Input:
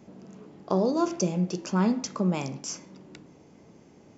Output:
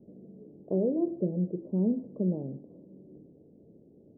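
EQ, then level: steep low-pass 540 Hz 36 dB/oct; air absorption 440 m; low shelf 400 Hz -7.5 dB; +3.5 dB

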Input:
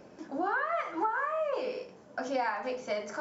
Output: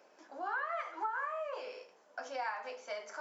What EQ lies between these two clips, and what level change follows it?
HPF 640 Hz 12 dB/oct; -5.0 dB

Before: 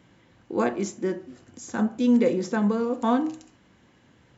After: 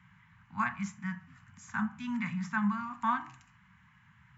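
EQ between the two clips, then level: HPF 53 Hz; elliptic band-stop 180–1000 Hz, stop band 80 dB; resonant high shelf 2900 Hz -10.5 dB, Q 1.5; 0.0 dB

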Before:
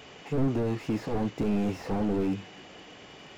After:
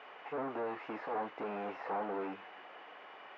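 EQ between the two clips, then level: HPF 1000 Hz 12 dB/oct; LPF 1300 Hz 12 dB/oct; air absorption 90 m; +7.0 dB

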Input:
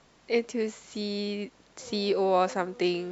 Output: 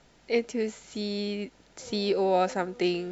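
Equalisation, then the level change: Butterworth band-stop 1100 Hz, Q 6.8; low shelf 62 Hz +8.5 dB; 0.0 dB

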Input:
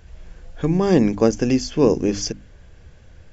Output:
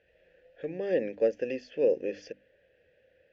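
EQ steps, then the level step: vowel filter e; air absorption 180 m; high shelf 2800 Hz +8.5 dB; 0.0 dB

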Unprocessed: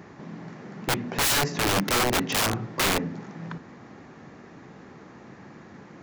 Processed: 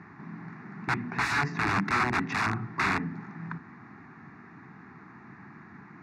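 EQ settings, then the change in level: HPF 91 Hz; synth low-pass 2900 Hz, resonance Q 2; fixed phaser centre 1300 Hz, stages 4; 0.0 dB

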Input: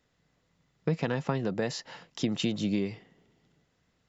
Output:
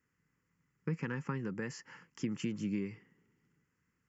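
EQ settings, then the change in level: HPF 100 Hz 6 dB/oct; fixed phaser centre 1600 Hz, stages 4; -4.0 dB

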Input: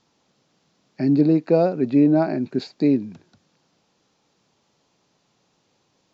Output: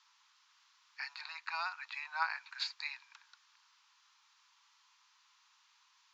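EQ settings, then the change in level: steep high-pass 940 Hz 72 dB/oct; air absorption 53 m; +2.5 dB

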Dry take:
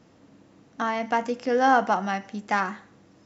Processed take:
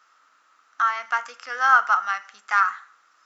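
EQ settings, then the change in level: resonant high-pass 1300 Hz, resonance Q 8.3; high shelf 4000 Hz +6.5 dB; -4.0 dB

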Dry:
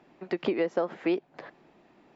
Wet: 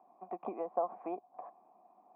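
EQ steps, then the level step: vocal tract filter a; resonant low shelf 160 Hz -7 dB, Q 3; +7.5 dB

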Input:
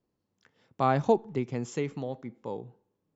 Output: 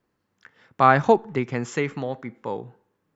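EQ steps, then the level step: bell 1600 Hz +11.5 dB 1.4 oct; +4.5 dB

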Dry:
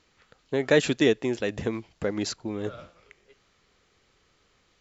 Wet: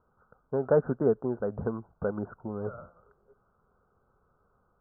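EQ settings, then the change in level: Chebyshev low-pass 1500 Hz, order 8; bell 310 Hz -11 dB 0.35 oct; 0.0 dB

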